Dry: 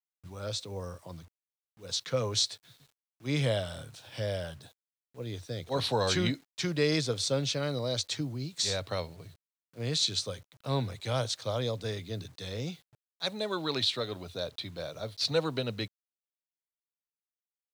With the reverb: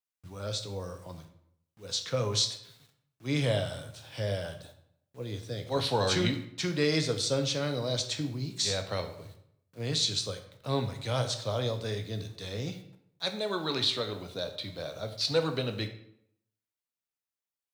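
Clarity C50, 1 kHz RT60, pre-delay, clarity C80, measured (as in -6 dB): 10.0 dB, 0.70 s, 10 ms, 13.0 dB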